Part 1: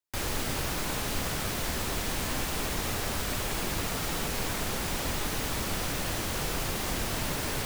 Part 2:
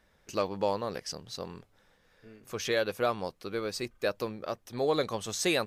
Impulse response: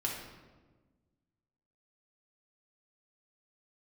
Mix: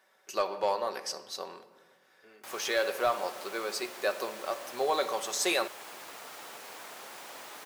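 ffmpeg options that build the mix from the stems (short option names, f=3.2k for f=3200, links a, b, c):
-filter_complex "[0:a]adelay=2300,volume=-9.5dB[a];[1:a]highshelf=f=6.8k:g=7,aecho=1:1:5.3:0.37,volume=0.5dB,asplit=2[b][c];[c]volume=-9.5dB[d];[2:a]atrim=start_sample=2205[e];[d][e]afir=irnorm=-1:irlink=0[f];[a][b][f]amix=inputs=3:normalize=0,highpass=710,tiltshelf=f=1.3k:g=4.5,asoftclip=type=tanh:threshold=-16dB"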